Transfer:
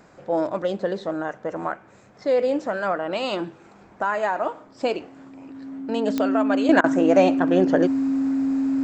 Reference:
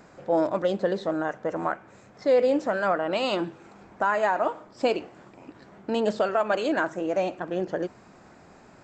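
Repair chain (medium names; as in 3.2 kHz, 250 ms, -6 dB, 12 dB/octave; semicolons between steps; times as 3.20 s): de-click; band-stop 270 Hz, Q 30; interpolate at 6.81 s, 28 ms; gain correction -9 dB, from 6.69 s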